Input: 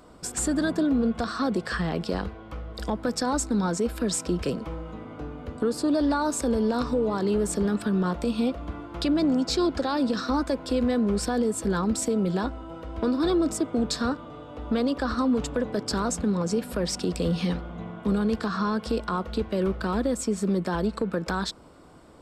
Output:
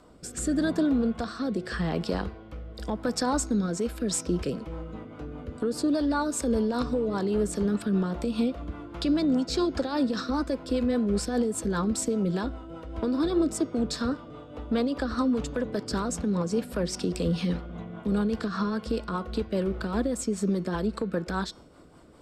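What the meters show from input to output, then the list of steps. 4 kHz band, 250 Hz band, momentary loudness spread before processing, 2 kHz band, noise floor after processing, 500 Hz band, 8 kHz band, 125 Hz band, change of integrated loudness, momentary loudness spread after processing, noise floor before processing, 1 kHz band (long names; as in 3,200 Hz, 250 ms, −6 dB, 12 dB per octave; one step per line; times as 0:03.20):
−3.0 dB, −1.5 dB, 10 LU, −3.0 dB, −46 dBFS, −2.0 dB, −2.5 dB, −1.0 dB, −1.5 dB, 10 LU, −43 dBFS, −3.5 dB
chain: rotating-speaker cabinet horn 0.85 Hz, later 5 Hz, at 0:03.40
hum removal 365.4 Hz, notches 18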